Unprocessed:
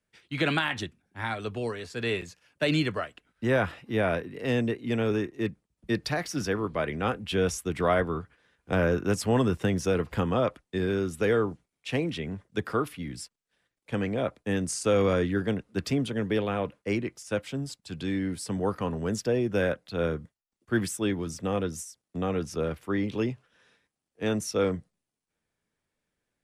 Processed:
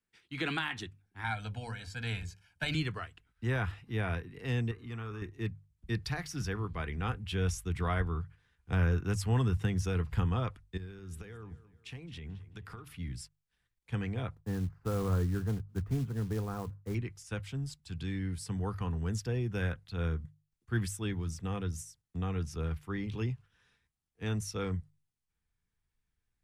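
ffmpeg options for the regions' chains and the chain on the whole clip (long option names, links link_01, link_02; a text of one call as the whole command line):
ffmpeg -i in.wav -filter_complex "[0:a]asettb=1/sr,asplit=3[link_01][link_02][link_03];[link_01]atrim=end=1.244[link_04];[link_02]atrim=start=1.24:end=2.75,asetpts=PTS-STARTPTS,afade=type=in:duration=0.004:curve=qsin,afade=type=out:start_time=1.506:duration=0.004:curve=qsin,bandreject=frequency=60:width_type=h:width=6,bandreject=frequency=120:width_type=h:width=6,bandreject=frequency=180:width_type=h:width=6,bandreject=frequency=240:width_type=h:width=6,bandreject=frequency=300:width_type=h:width=6,bandreject=frequency=360:width_type=h:width=6,bandreject=frequency=420:width_type=h:width=6,bandreject=frequency=480:width_type=h:width=6,bandreject=frequency=540:width_type=h:width=6,bandreject=frequency=600:width_type=h:width=6,aecho=1:1:1.3:0.99,atrim=end_sample=66591[link_05];[link_03]atrim=start=2.746[link_06];[link_04][link_05]acrossfade=duration=0.004:curve1=hsin:curve2=qsin[link_07];[link_07][link_06]acrossfade=duration=0.004:curve1=qsin:curve2=hsin,asettb=1/sr,asplit=3[link_08][link_09][link_10];[link_08]atrim=end=4.714[link_11];[link_09]atrim=start=4.71:end=5.22,asetpts=PTS-STARTPTS,afade=type=in:duration=0.004:curve=qsin,afade=type=out:start_time=0.506:duration=0.004:curve=qsin,equalizer=frequency=1200:width=2.9:gain=14.5,bandreject=frequency=91.98:width_type=h:width=4,bandreject=frequency=183.96:width_type=h:width=4,bandreject=frequency=275.94:width_type=h:width=4,bandreject=frequency=367.92:width_type=h:width=4,bandreject=frequency=459.9:width_type=h:width=4,bandreject=frequency=551.88:width_type=h:width=4,bandreject=frequency=643.86:width_type=h:width=4,bandreject=frequency=735.84:width_type=h:width=4,bandreject=frequency=827.82:width_type=h:width=4,bandreject=frequency=919.8:width_type=h:width=4,bandreject=frequency=1011.78:width_type=h:width=4,bandreject=frequency=1103.76:width_type=h:width=4,bandreject=frequency=1195.74:width_type=h:width=4,bandreject=frequency=1287.72:width_type=h:width=4,bandreject=frequency=1379.7:width_type=h:width=4,bandreject=frequency=1471.68:width_type=h:width=4,bandreject=frequency=1563.66:width_type=h:width=4,bandreject=frequency=1655.64:width_type=h:width=4,bandreject=frequency=1747.62:width_type=h:width=4,acompressor=threshold=-38dB:ratio=2:attack=3.2:release=140:knee=1:detection=peak[link_12];[link_10]atrim=start=5.216[link_13];[link_11][link_12]acrossfade=duration=0.004:curve1=hsin:curve2=qsin[link_14];[link_14][link_13]acrossfade=duration=0.004:curve1=qsin:curve2=hsin,asettb=1/sr,asplit=3[link_15][link_16][link_17];[link_15]atrim=end=10.774[link_18];[link_16]atrim=start=10.77:end=12.94,asetpts=PTS-STARTPTS,afade=type=in:duration=0.004:curve=qsin,afade=type=out:start_time=2.166:duration=0.004:curve=qsin,acompressor=threshold=-36dB:ratio=10:attack=3.2:release=140:knee=1:detection=peak,asplit=2[link_19][link_20];[link_20]adelay=218,lowpass=frequency=4600:poles=1,volume=-16dB,asplit=2[link_21][link_22];[link_22]adelay=218,lowpass=frequency=4600:poles=1,volume=0.45,asplit=2[link_23][link_24];[link_24]adelay=218,lowpass=frequency=4600:poles=1,volume=0.45,asplit=2[link_25][link_26];[link_26]adelay=218,lowpass=frequency=4600:poles=1,volume=0.45[link_27];[link_19][link_21][link_23][link_25][link_27]amix=inputs=5:normalize=0,atrim=end_sample=95697[link_28];[link_17]atrim=start=12.936[link_29];[link_18][link_28]acrossfade=duration=0.004:curve1=hsin:curve2=qsin[link_30];[link_30][link_29]acrossfade=duration=0.004:curve1=qsin:curve2=hsin,asettb=1/sr,asplit=3[link_31][link_32][link_33];[link_31]atrim=end=14.354[link_34];[link_32]atrim=start=14.35:end=16.95,asetpts=PTS-STARTPTS,afade=type=in:duration=0.004:curve=qsin,afade=type=out:start_time=2.596:duration=0.004:curve=qsin,lowpass=frequency=1400:width=0.5412,lowpass=frequency=1400:width=1.3066,acrusher=bits=5:mode=log:mix=0:aa=0.000001[link_35];[link_33]atrim=start=16.946[link_36];[link_34][link_35]acrossfade=duration=0.004:curve1=hsin:curve2=qsin[link_37];[link_37][link_36]acrossfade=duration=0.004:curve1=qsin:curve2=hsin,equalizer=frequency=580:width=5:gain=-14.5,bandreject=frequency=50:width_type=h:width=6,bandreject=frequency=100:width_type=h:width=6,bandreject=frequency=150:width_type=h:width=6,asubboost=boost=8:cutoff=94,volume=-6.5dB" out.wav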